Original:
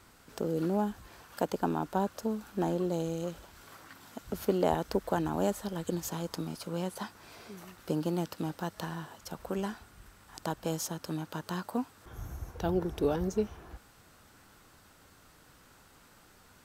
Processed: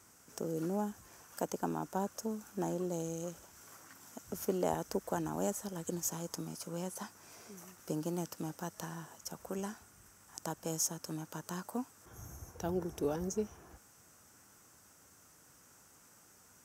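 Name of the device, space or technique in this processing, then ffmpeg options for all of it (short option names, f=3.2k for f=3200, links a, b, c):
budget condenser microphone: -af "highpass=79,highshelf=f=5k:t=q:w=3:g=6,volume=-5.5dB"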